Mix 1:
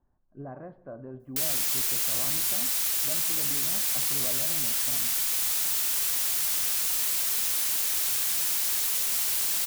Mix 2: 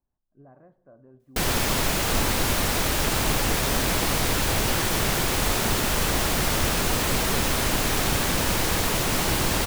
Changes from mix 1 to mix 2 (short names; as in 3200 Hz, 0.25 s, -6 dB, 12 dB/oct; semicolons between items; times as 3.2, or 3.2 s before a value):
speech -11.0 dB; background: remove pre-emphasis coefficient 0.97